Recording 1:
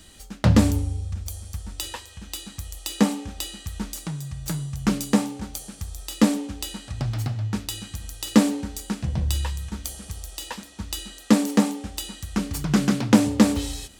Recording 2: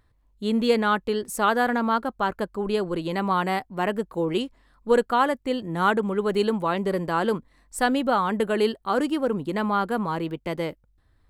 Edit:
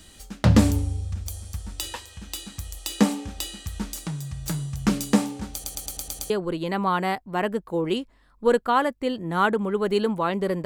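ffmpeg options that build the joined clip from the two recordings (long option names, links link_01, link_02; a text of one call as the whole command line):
ffmpeg -i cue0.wav -i cue1.wav -filter_complex "[0:a]apad=whole_dur=10.65,atrim=end=10.65,asplit=7[link_01][link_02][link_03][link_04][link_05][link_06][link_07];[link_01]atrim=end=5.642[link_08];[link_02]atrim=start=5.528:end=5.642[link_09];[link_03]atrim=start=5.528:end=5.642[link_10];[link_04]atrim=start=5.528:end=5.642[link_11];[link_05]atrim=start=5.528:end=5.642[link_12];[link_06]atrim=start=5.528:end=5.642[link_13];[link_07]atrim=start=5.528:end=5.642[link_14];[1:a]atrim=start=2.738:end=7.09[link_15];[link_08][link_09]acrossfade=duration=0.004:curve1=hsin:curve2=hsin[link_16];[link_16][link_10]acrossfade=duration=0.004:curve1=hsin:curve2=hsin[link_17];[link_17][link_11]acrossfade=duration=0.004:curve1=hsin:curve2=hsin[link_18];[link_18][link_12]acrossfade=duration=0.004:curve1=hsin:curve2=hsin[link_19];[link_19][link_13]acrossfade=duration=0.004:curve1=hsin:curve2=hsin[link_20];[link_20][link_14]acrossfade=duration=0.004:curve1=hsin:curve2=hsin[link_21];[link_21][link_15]acrossfade=duration=0.004:curve1=hsin:curve2=hsin" out.wav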